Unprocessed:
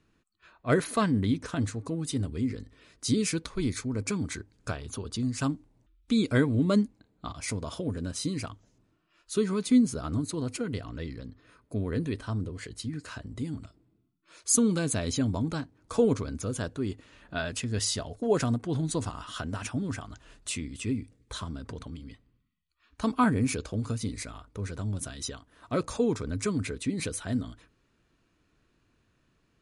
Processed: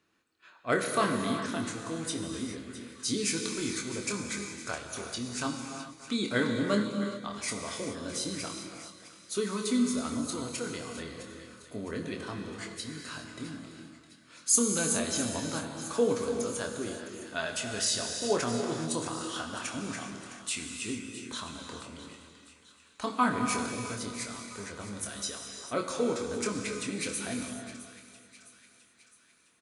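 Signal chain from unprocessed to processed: HPF 220 Hz 6 dB/oct; low shelf 320 Hz -8 dB; doubler 25 ms -7 dB; on a send: split-band echo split 1300 Hz, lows 0.289 s, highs 0.66 s, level -14 dB; on the sum: non-linear reverb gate 0.45 s flat, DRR 3.5 dB

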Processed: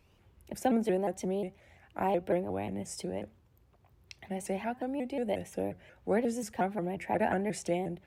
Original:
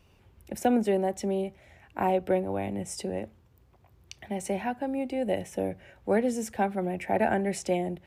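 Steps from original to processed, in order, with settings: shaped vibrato saw up 5.6 Hz, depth 160 cents; gain -4 dB

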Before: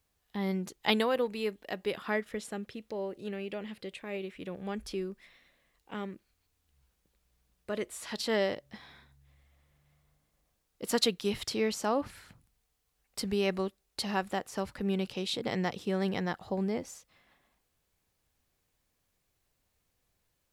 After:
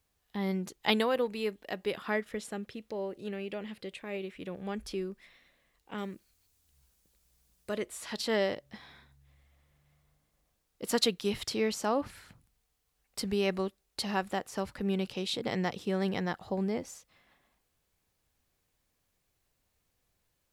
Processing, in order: 5.98–7.75 tone controls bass +1 dB, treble +9 dB

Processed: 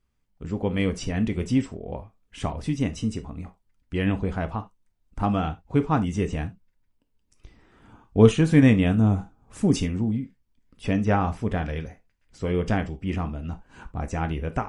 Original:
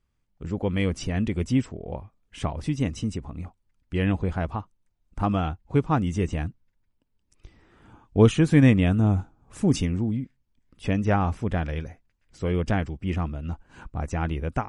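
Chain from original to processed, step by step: non-linear reverb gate 0.1 s falling, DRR 8.5 dB

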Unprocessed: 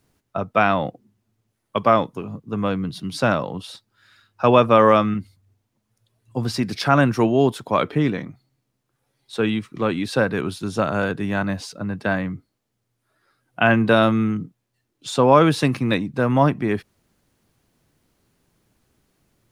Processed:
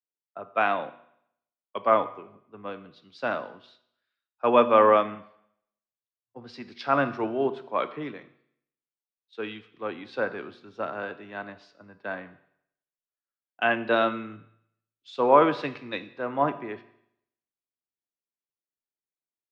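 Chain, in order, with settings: three-band isolator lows -17 dB, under 290 Hz, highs -21 dB, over 4700 Hz; vibrato 0.38 Hz 32 cents; air absorption 93 m; reverb RT60 1.1 s, pre-delay 8 ms, DRR 10.5 dB; three-band expander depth 70%; gain -8 dB

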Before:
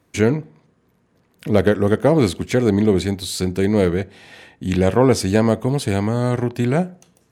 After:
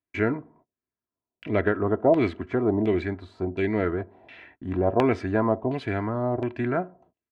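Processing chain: gate -48 dBFS, range -26 dB; comb 3 ms, depth 54%; LFO low-pass saw down 1.4 Hz 660–2800 Hz; gain -8.5 dB

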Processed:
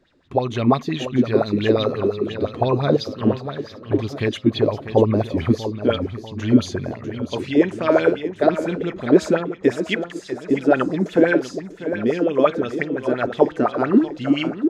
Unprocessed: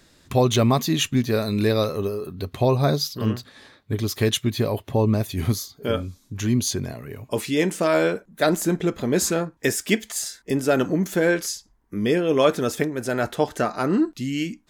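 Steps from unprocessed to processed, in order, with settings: AGC; tape spacing loss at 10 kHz 20 dB; on a send: feedback echo 0.645 s, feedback 48%, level -10.5 dB; on the sum: LFO bell 5.8 Hz 270–3700 Hz +17 dB; gain -9 dB

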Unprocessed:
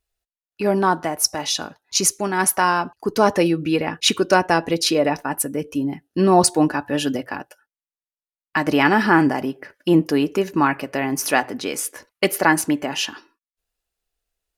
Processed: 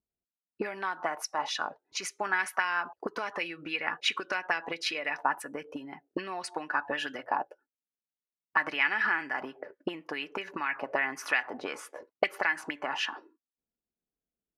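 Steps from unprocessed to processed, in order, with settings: compressor 8:1, threshold -20 dBFS, peak gain reduction 11.5 dB; auto-wah 220–2200 Hz, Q 2.7, up, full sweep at -20 dBFS; gain +5.5 dB

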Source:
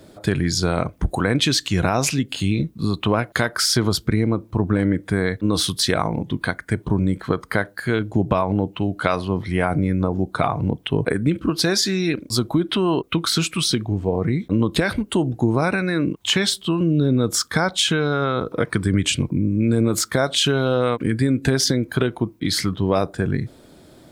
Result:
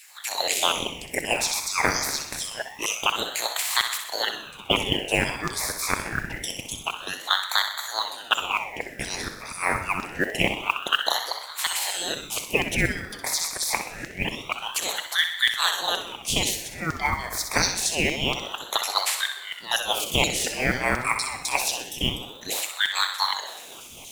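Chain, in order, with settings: spectral limiter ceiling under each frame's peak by 26 dB; de-esser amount 35%; elliptic band-stop 1800–4500 Hz, stop band 40 dB; reverse; upward compressor, threshold -34 dBFS; reverse; LFO high-pass saw down 4.2 Hz 600–6000 Hz; modulation noise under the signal 26 dB; on a send: thinning echo 63 ms, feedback 48%, level -8 dB; on the sum: shoebox room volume 1900 m³, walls mixed, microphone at 0.79 m; ring modulator with a swept carrier 1600 Hz, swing 65%, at 0.26 Hz

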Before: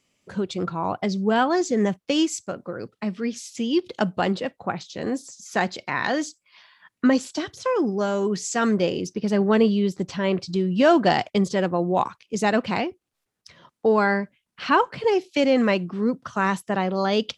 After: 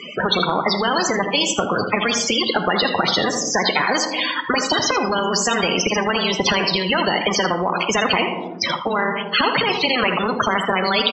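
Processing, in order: low shelf 320 Hz -8 dB; compressor 8:1, threshold -31 dBFS, peak gain reduction 17 dB; granular stretch 0.64×, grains 59 ms; loudest bins only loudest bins 32; speaker cabinet 180–4100 Hz, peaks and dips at 180 Hz +3 dB, 460 Hz +5 dB, 980 Hz +5 dB, 1700 Hz -7 dB, 3500 Hz +5 dB; echo 80 ms -18.5 dB; on a send at -14 dB: reverb RT60 0.60 s, pre-delay 5 ms; on the sum: maximiser +25 dB; spectral compressor 4:1; gain -1 dB

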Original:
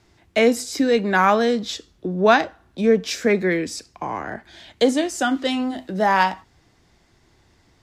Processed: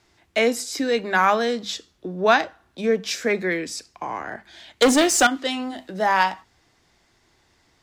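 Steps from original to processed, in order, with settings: notches 50/100/150/200 Hz; 4.82–5.27 sample leveller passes 3; low shelf 460 Hz -7.5 dB

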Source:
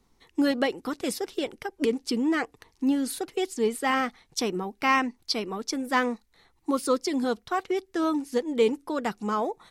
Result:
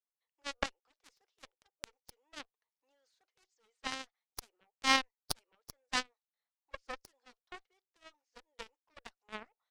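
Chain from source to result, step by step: elliptic band-pass 550–6500 Hz, stop band 40 dB; added harmonics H 2 -8 dB, 3 -9 dB, 5 -41 dB, 8 -32 dB, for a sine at -11 dBFS

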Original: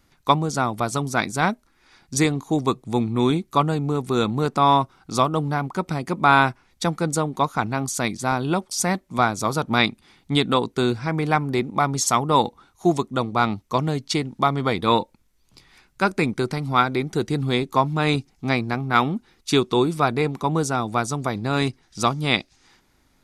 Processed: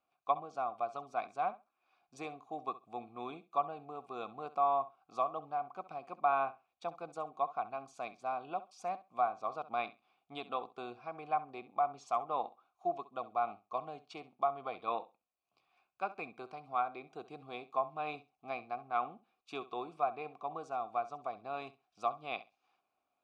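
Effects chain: vowel filter a; treble ducked by the level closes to 2500 Hz, closed at -22.5 dBFS; flutter echo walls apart 11.3 m, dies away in 0.24 s; gain -6 dB

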